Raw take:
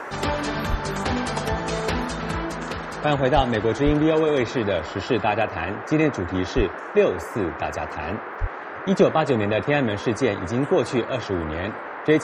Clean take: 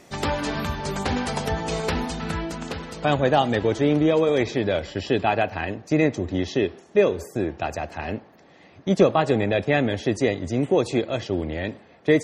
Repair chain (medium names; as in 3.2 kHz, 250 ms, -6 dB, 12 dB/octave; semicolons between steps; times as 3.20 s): de-plosive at 0.70/3.35/3.85/6.56/8.40 s; noise print and reduce 13 dB